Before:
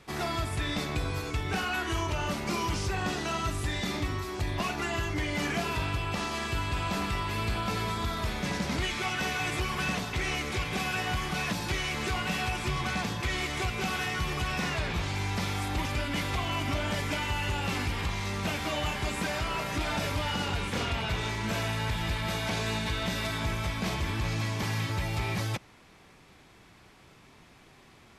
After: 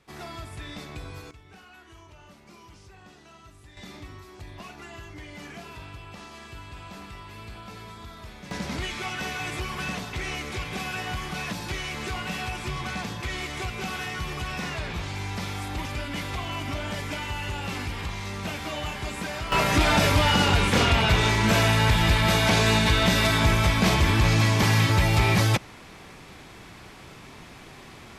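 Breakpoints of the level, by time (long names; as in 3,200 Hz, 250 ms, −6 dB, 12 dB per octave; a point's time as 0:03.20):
−7.5 dB
from 0:01.31 −19.5 dB
from 0:03.77 −11 dB
from 0:08.51 −1 dB
from 0:19.52 +10.5 dB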